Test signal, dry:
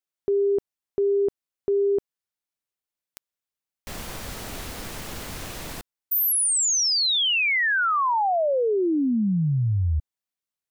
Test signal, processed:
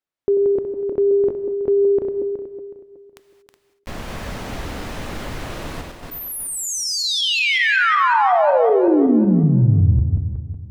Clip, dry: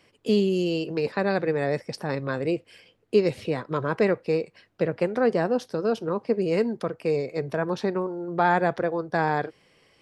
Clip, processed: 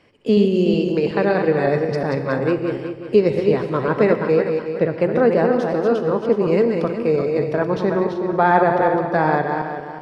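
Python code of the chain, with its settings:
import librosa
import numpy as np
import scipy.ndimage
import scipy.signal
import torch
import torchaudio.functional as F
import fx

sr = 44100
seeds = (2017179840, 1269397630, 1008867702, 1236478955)

y = fx.reverse_delay_fb(x, sr, ms=185, feedback_pct=54, wet_db=-5)
y = fx.lowpass(y, sr, hz=2000.0, slope=6)
y = fx.rev_gated(y, sr, seeds[0], gate_ms=260, shape='flat', drr_db=9.5)
y = y * librosa.db_to_amplitude(6.0)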